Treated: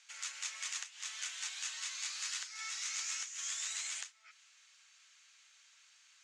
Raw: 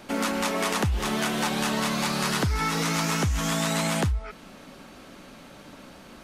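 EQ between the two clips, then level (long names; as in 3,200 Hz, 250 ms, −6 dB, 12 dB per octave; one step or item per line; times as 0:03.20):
four-pole ladder high-pass 1,500 Hz, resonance 20%
transistor ladder low-pass 7,600 Hz, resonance 65%
+2.0 dB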